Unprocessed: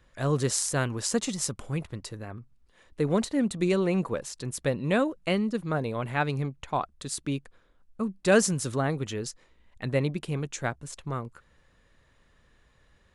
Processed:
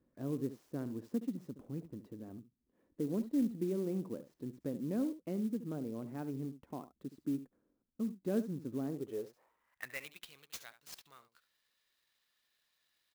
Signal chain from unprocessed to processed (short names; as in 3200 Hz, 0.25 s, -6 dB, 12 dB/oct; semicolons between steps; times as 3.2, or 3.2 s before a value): echo 71 ms -14 dB; in parallel at +2 dB: compressor, threshold -33 dBFS, peak gain reduction 16.5 dB; on the sum: band-pass sweep 270 Hz -> 4600 Hz, 8.88–10.34; clock jitter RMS 0.028 ms; gain -7.5 dB